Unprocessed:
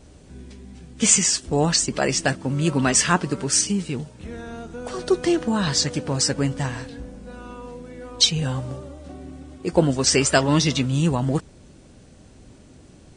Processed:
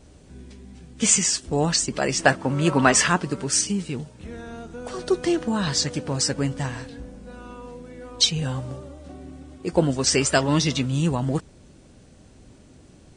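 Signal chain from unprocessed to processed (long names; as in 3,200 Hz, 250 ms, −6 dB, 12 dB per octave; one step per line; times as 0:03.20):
0:02.19–0:03.08: parametric band 990 Hz +9.5 dB 2.6 octaves
level −2 dB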